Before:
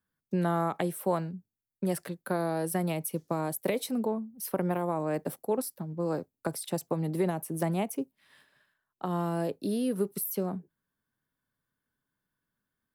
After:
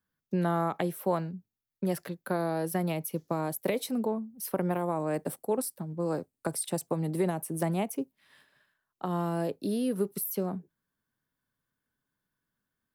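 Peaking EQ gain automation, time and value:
peaking EQ 8.8 kHz 0.3 oct
3.10 s -9.5 dB
3.98 s 0 dB
4.59 s 0 dB
5.19 s +7.5 dB
7.23 s +7.5 dB
7.98 s -1.5 dB

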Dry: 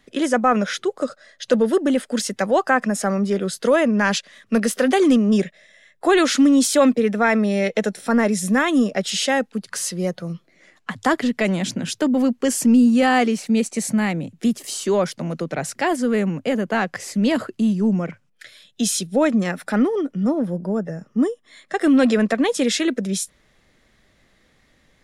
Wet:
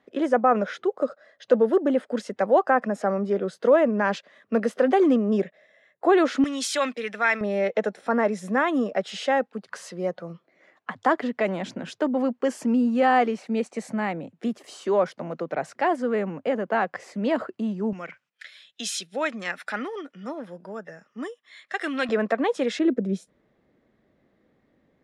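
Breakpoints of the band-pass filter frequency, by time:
band-pass filter, Q 0.79
610 Hz
from 6.44 s 2.3 kHz
from 7.41 s 780 Hz
from 17.93 s 2.2 kHz
from 22.09 s 840 Hz
from 22.79 s 330 Hz

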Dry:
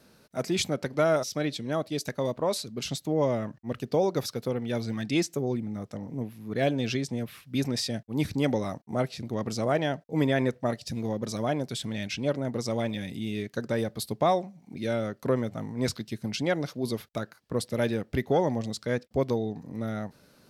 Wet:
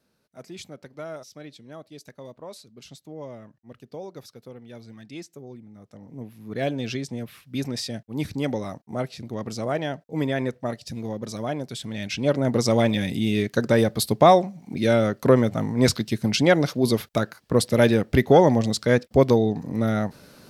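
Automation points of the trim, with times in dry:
5.73 s -12.5 dB
6.41 s -0.5 dB
11.84 s -0.5 dB
12.53 s +9.5 dB

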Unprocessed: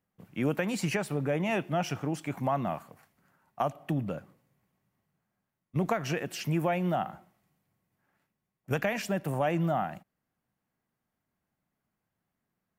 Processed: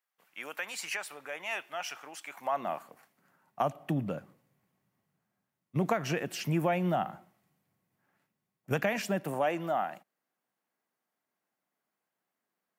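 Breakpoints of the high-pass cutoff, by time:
2.32 s 1.1 kHz
2.67 s 380 Hz
3.67 s 110 Hz
9.03 s 110 Hz
9.53 s 360 Hz

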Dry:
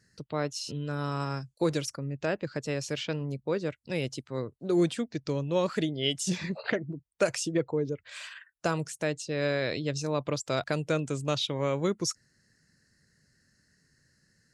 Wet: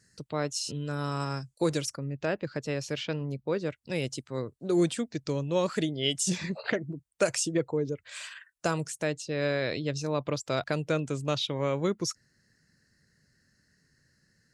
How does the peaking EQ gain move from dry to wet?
peaking EQ 8.3 kHz 0.91 oct
1.67 s +8 dB
2.23 s -4 dB
3.51 s -4 dB
4.04 s +6 dB
8.73 s +6 dB
9.34 s -3.5 dB

